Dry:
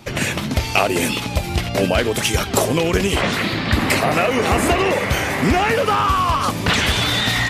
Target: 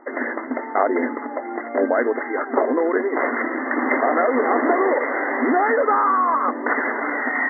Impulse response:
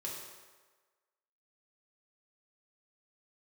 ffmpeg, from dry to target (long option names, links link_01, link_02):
-af "afftfilt=real='re*between(b*sr/4096,230,2100)':imag='im*between(b*sr/4096,230,2100)':win_size=4096:overlap=0.75"